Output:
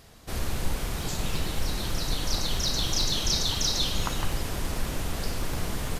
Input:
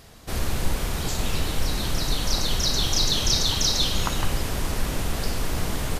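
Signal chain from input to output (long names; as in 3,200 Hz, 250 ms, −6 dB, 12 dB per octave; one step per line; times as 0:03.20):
regular buffer underruns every 0.11 s, samples 256, repeat, from 0:00.69
level −4 dB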